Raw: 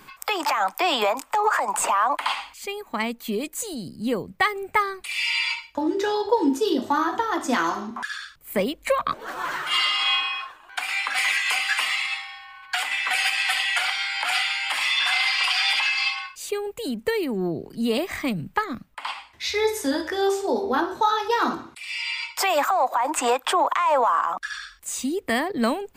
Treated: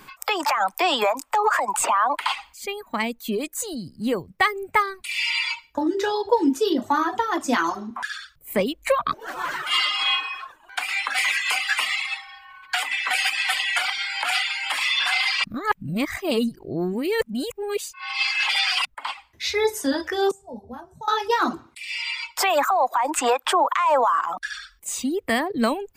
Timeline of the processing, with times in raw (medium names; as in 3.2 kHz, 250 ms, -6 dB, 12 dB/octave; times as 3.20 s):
15.44–18.85 s: reverse
20.31–21.08 s: FFT filter 100 Hz 0 dB, 180 Hz +5 dB, 320 Hz -23 dB, 630 Hz -12 dB, 1.4 kHz -22 dB, 4.1 kHz -25 dB, 8.7 kHz -8 dB, 14 kHz -16 dB
whole clip: reverb removal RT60 0.67 s; trim +1.5 dB